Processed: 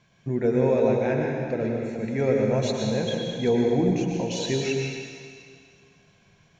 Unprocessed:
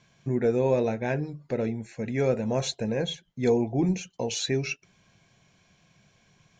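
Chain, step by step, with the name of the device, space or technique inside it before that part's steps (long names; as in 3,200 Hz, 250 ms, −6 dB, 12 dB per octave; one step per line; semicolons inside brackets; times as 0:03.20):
swimming-pool hall (convolution reverb RT60 2.1 s, pre-delay 98 ms, DRR −0.5 dB; high-shelf EQ 5,000 Hz −7 dB)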